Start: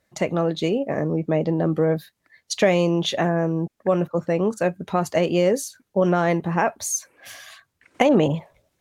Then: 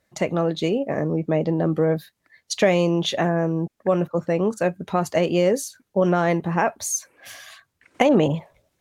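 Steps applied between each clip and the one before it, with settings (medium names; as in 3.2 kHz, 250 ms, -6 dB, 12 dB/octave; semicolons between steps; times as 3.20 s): no audible change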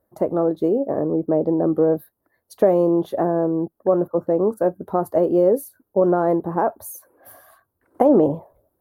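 FFT filter 100 Hz 0 dB, 160 Hz -6 dB, 330 Hz +5 dB, 1 kHz 0 dB, 1.5 kHz -7 dB, 2.4 kHz -27 dB, 4.4 kHz -20 dB, 6.8 kHz -23 dB, 12 kHz +5 dB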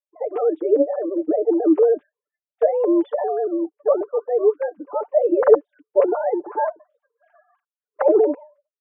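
formants replaced by sine waves; expander -48 dBFS; comb 6.8 ms, depth 68%; trim -1 dB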